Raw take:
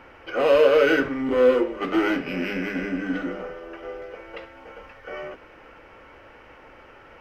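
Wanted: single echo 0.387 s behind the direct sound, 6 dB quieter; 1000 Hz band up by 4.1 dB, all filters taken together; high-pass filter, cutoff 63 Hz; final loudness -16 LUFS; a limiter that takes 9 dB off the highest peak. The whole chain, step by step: HPF 63 Hz; bell 1000 Hz +5.5 dB; limiter -13 dBFS; echo 0.387 s -6 dB; gain +8 dB

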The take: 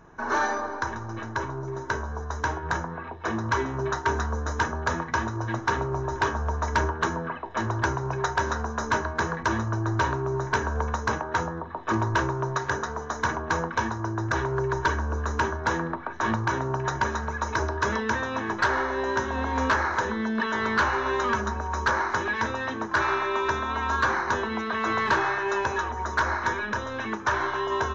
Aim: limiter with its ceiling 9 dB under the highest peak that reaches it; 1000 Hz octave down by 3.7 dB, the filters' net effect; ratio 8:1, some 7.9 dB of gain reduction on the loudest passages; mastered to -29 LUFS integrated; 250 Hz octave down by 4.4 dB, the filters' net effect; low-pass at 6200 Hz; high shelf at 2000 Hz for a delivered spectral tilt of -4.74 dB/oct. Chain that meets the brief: LPF 6200 Hz; bell 250 Hz -6 dB; bell 1000 Hz -5.5 dB; high shelf 2000 Hz +6 dB; compressor 8:1, threshold -30 dBFS; gain +6.5 dB; limiter -18.5 dBFS

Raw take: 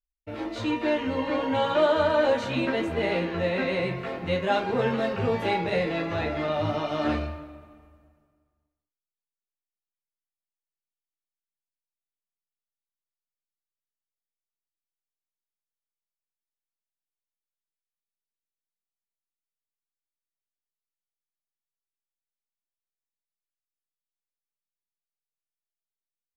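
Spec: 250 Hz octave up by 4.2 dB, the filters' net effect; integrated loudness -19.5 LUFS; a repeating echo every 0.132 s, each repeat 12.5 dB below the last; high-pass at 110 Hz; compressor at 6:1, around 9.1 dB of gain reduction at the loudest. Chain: HPF 110 Hz; bell 250 Hz +5.5 dB; compressor 6:1, threshold -27 dBFS; feedback echo 0.132 s, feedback 24%, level -12.5 dB; gain +11.5 dB

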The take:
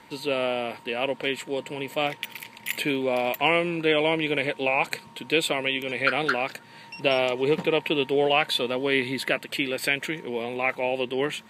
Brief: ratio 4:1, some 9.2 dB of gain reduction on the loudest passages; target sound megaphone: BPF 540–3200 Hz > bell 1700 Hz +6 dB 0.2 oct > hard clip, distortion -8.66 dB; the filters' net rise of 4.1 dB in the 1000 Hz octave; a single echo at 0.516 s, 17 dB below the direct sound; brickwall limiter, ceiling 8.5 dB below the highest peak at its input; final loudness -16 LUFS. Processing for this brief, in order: bell 1000 Hz +6.5 dB; compressor 4:1, threshold -25 dBFS; limiter -18.5 dBFS; BPF 540–3200 Hz; bell 1700 Hz +6 dB 0.2 oct; echo 0.516 s -17 dB; hard clip -31.5 dBFS; gain +20 dB

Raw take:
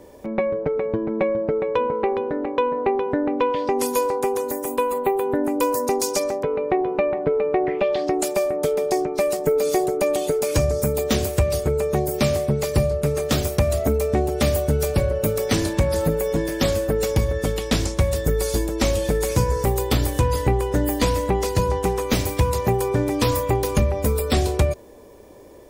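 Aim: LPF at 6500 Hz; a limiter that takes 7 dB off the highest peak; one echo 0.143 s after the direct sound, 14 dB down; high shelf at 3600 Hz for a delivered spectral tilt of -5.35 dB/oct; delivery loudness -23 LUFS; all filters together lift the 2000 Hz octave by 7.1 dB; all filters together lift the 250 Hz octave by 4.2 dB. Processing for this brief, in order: LPF 6500 Hz; bell 250 Hz +5.5 dB; bell 2000 Hz +7.5 dB; high shelf 3600 Hz +3.5 dB; limiter -11.5 dBFS; echo 0.143 s -14 dB; gain -1.5 dB

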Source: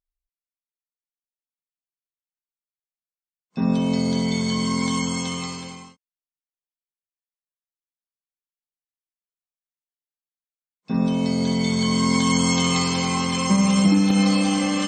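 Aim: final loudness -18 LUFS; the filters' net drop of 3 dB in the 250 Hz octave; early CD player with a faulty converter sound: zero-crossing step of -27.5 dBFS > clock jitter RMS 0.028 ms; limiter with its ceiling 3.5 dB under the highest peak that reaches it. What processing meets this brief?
bell 250 Hz -4 dB; limiter -13 dBFS; zero-crossing step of -27.5 dBFS; clock jitter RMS 0.028 ms; gain +7 dB

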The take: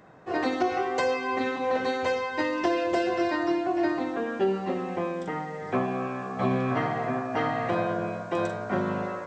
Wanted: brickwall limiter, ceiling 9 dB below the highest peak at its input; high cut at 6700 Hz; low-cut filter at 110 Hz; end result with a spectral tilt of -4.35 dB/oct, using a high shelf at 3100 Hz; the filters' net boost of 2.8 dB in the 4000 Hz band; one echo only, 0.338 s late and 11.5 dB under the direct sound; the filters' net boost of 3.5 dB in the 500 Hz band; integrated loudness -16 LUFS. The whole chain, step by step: HPF 110 Hz; LPF 6700 Hz; bell 500 Hz +4.5 dB; high shelf 3100 Hz -5 dB; bell 4000 Hz +7.5 dB; limiter -20 dBFS; echo 0.338 s -11.5 dB; gain +12.5 dB

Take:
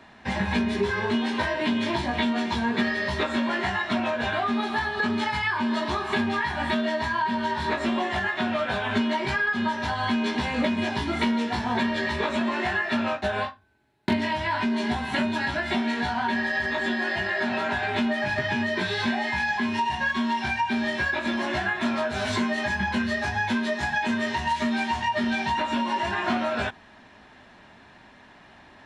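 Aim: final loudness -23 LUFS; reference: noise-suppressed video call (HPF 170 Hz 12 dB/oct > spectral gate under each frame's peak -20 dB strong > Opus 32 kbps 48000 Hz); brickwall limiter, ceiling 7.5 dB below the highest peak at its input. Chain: limiter -20 dBFS; HPF 170 Hz 12 dB/oct; spectral gate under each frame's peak -20 dB strong; gain +6.5 dB; Opus 32 kbps 48000 Hz

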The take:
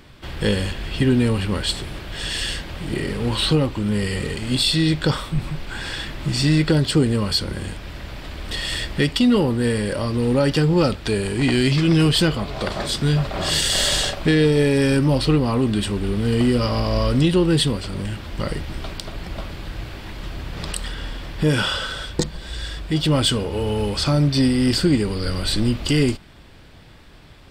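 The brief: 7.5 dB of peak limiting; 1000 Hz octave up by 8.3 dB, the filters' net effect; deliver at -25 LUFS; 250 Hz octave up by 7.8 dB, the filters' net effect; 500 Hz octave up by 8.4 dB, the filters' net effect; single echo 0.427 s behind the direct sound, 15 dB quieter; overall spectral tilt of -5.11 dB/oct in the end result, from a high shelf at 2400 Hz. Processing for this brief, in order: bell 250 Hz +7.5 dB; bell 500 Hz +6 dB; bell 1000 Hz +7.5 dB; high shelf 2400 Hz +4.5 dB; limiter -7.5 dBFS; echo 0.427 s -15 dB; gain -8 dB

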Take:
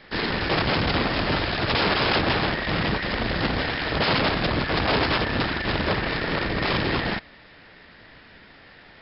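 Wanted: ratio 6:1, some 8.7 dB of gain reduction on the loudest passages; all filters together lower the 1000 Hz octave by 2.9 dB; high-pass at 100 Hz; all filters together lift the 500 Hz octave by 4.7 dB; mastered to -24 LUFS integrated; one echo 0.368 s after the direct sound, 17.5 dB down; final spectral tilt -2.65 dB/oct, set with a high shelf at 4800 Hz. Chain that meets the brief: HPF 100 Hz; bell 500 Hz +7.5 dB; bell 1000 Hz -7 dB; high shelf 4800 Hz +8 dB; compressor 6:1, threshold -26 dBFS; echo 0.368 s -17.5 dB; gain +5 dB

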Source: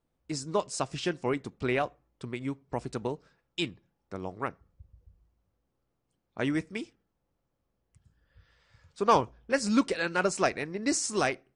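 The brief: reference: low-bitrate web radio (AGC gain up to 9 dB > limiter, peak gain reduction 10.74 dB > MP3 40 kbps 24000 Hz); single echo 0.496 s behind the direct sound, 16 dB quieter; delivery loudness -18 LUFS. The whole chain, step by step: echo 0.496 s -16 dB; AGC gain up to 9 dB; limiter -19.5 dBFS; gain +16 dB; MP3 40 kbps 24000 Hz

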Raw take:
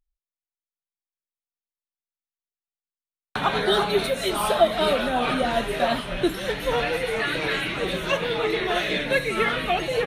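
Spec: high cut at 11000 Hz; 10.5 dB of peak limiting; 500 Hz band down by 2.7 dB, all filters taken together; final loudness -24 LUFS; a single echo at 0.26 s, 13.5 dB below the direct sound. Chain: LPF 11000 Hz; bell 500 Hz -3.5 dB; limiter -17.5 dBFS; echo 0.26 s -13.5 dB; gain +2.5 dB

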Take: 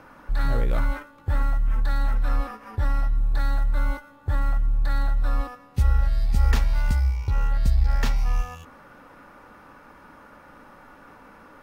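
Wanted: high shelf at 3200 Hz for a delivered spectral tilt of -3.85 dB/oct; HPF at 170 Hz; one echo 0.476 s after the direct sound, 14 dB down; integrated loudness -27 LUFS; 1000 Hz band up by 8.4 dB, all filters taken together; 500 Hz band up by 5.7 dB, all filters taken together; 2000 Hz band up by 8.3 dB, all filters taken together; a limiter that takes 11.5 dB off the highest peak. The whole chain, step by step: HPF 170 Hz; bell 500 Hz +4 dB; bell 1000 Hz +7.5 dB; bell 2000 Hz +5 dB; high shelf 3200 Hz +8 dB; limiter -21.5 dBFS; echo 0.476 s -14 dB; gain +6 dB

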